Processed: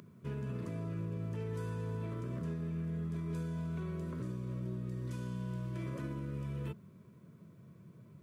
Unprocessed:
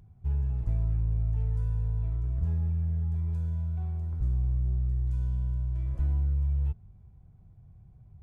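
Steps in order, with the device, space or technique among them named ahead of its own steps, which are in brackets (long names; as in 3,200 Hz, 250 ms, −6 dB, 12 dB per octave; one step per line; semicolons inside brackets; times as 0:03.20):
PA system with an anti-feedback notch (high-pass filter 190 Hz 24 dB per octave; Butterworth band-reject 780 Hz, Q 2.4; brickwall limiter −44 dBFS, peak gain reduction 7.5 dB)
level +12.5 dB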